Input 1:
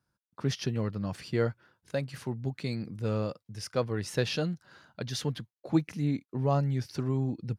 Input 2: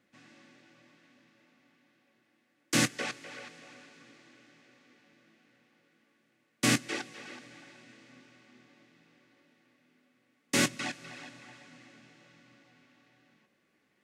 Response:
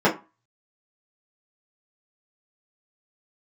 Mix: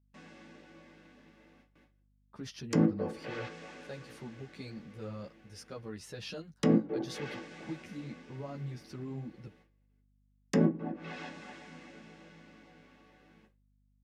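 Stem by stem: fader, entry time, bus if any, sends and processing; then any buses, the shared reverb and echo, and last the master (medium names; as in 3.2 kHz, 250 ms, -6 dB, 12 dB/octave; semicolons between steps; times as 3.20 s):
-6.5 dB, 1.95 s, no send, peak limiter -22 dBFS, peak gain reduction 8.5 dB; three-phase chorus
-1.5 dB, 0.00 s, send -16.5 dB, low-pass that closes with the level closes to 480 Hz, closed at -31 dBFS; gate with hold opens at -59 dBFS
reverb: on, RT60 0.30 s, pre-delay 3 ms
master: gate with hold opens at -52 dBFS; hum 50 Hz, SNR 33 dB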